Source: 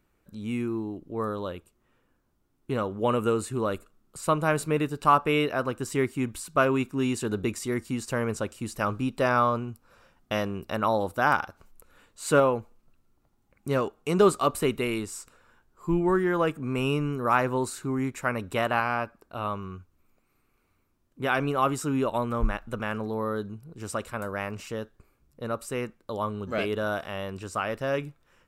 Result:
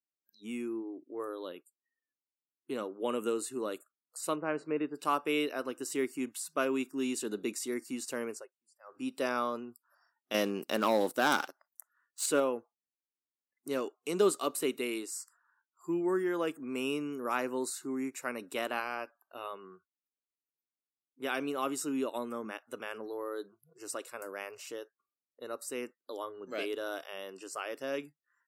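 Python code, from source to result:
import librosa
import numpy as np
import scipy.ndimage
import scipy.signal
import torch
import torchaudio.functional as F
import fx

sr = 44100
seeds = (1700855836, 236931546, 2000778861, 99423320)

y = fx.lowpass(x, sr, hz=2100.0, slope=12, at=(4.35, 4.94), fade=0.02)
y = fx.leveller(y, sr, passes=2, at=(10.34, 12.26))
y = fx.edit(y, sr, fx.fade_down_up(start_s=8.25, length_s=0.83, db=-22.5, fade_s=0.25), tone=tone)
y = scipy.signal.sosfilt(scipy.signal.butter(4, 260.0, 'highpass', fs=sr, output='sos'), y)
y = fx.noise_reduce_blind(y, sr, reduce_db=29)
y = fx.peak_eq(y, sr, hz=1000.0, db=-11.0, octaves=2.8)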